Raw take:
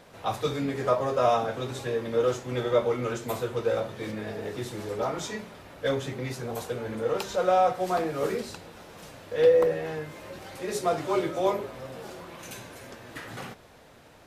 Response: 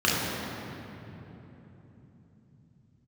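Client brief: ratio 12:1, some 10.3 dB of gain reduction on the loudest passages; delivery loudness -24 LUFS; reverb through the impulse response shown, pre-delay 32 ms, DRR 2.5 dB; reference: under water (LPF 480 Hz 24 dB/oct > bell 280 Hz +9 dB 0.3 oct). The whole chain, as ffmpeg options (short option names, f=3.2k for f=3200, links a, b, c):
-filter_complex "[0:a]acompressor=threshold=-25dB:ratio=12,asplit=2[a][b];[1:a]atrim=start_sample=2205,adelay=32[c];[b][c]afir=irnorm=-1:irlink=0,volume=-19.5dB[d];[a][d]amix=inputs=2:normalize=0,lowpass=f=480:w=0.5412,lowpass=f=480:w=1.3066,equalizer=f=280:t=o:w=0.3:g=9,volume=6dB"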